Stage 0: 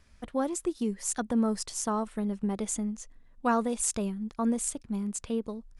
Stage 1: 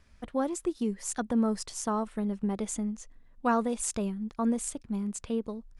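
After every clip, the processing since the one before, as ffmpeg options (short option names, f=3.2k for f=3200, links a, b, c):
-af "highshelf=f=5.5k:g=-5"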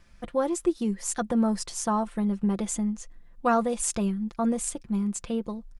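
-af "aecho=1:1:5.8:0.51,volume=3dB"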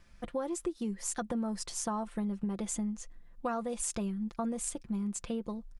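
-af "acompressor=threshold=-28dB:ratio=6,volume=-3dB"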